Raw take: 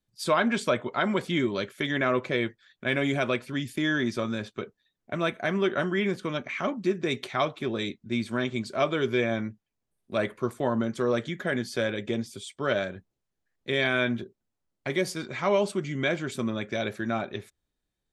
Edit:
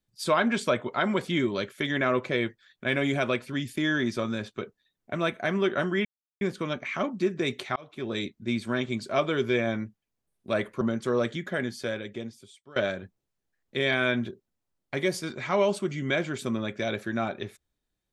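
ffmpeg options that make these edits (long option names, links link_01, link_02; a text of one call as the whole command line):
ffmpeg -i in.wav -filter_complex "[0:a]asplit=5[link_01][link_02][link_03][link_04][link_05];[link_01]atrim=end=6.05,asetpts=PTS-STARTPTS,afade=type=out:start_time=6.046:duration=0.004:curve=hsin,apad=pad_dur=0.36[link_06];[link_02]atrim=start=6.05:end=7.4,asetpts=PTS-STARTPTS,afade=type=in:duration=0.004:curve=hsin,afade=type=out:start_time=1.346:duration=0.004:curve=hsin[link_07];[link_03]atrim=start=7.4:end=10.452,asetpts=PTS-STARTPTS,afade=type=in:duration=0.42[link_08];[link_04]atrim=start=10.738:end=12.69,asetpts=PTS-STARTPTS,afade=type=out:start_time=0.532:duration=1.42:silence=0.0841395[link_09];[link_05]atrim=start=12.69,asetpts=PTS-STARTPTS,afade=type=in:duration=0.004:curve=hsin:silence=0.0841395[link_10];[link_06][link_07][link_08]concat=n=3:v=0:a=1[link_11];[link_09][link_10]concat=n=2:v=0:a=1[link_12];[link_11][link_12]acrossfade=duration=0.004:curve1=hsin:curve2=hsin" out.wav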